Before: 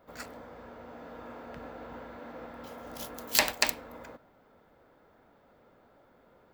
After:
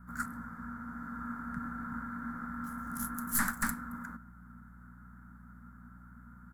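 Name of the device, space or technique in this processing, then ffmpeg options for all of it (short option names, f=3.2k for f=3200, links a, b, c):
valve amplifier with mains hum: -af "aeval=exprs='(tanh(25.1*val(0)+0.5)-tanh(0.5))/25.1':c=same,aeval=exprs='val(0)+0.001*(sin(2*PI*60*n/s)+sin(2*PI*2*60*n/s)/2+sin(2*PI*3*60*n/s)/3+sin(2*PI*4*60*n/s)/4+sin(2*PI*5*60*n/s)/5)':c=same,firequalizer=gain_entry='entry(110,0);entry(220,10);entry(350,-21);entry(570,-25);entry(1000,-5);entry(1400,9);entry(2600,-26);entry(7300,-2);entry(11000,6);entry(16000,-12)':delay=0.05:min_phase=1,volume=6dB"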